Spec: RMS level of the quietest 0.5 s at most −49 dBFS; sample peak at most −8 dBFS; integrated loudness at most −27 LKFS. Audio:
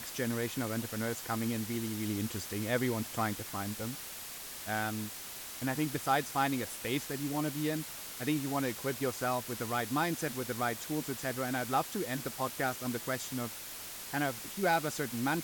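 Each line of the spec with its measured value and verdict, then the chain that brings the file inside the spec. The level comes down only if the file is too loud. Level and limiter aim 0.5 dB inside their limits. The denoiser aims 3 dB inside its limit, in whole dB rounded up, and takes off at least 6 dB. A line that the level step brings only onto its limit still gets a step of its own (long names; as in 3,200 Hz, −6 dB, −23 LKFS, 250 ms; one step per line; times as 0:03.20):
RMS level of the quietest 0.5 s −44 dBFS: out of spec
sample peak −16.0 dBFS: in spec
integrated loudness −34.5 LKFS: in spec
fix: broadband denoise 8 dB, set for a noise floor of −44 dBFS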